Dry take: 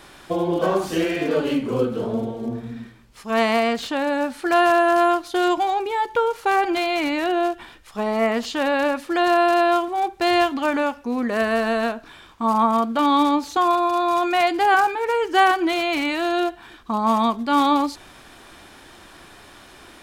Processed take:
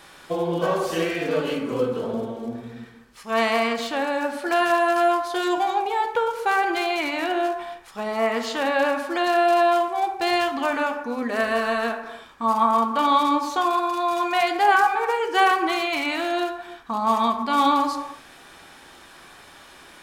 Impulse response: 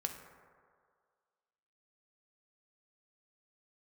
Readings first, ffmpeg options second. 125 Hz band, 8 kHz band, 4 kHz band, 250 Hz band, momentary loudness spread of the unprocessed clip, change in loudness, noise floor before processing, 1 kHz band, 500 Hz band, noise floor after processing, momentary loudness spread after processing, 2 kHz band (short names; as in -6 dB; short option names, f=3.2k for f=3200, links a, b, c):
n/a, -0.5 dB, -1.0 dB, -5.0 dB, 9 LU, -2.0 dB, -47 dBFS, -1.0 dB, -2.0 dB, -48 dBFS, 10 LU, -0.5 dB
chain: -filter_complex "[0:a]lowshelf=f=380:g=-7.5[a];[1:a]atrim=start_sample=2205,afade=t=out:st=0.38:d=0.01,atrim=end_sample=17199[b];[a][b]afir=irnorm=-1:irlink=0"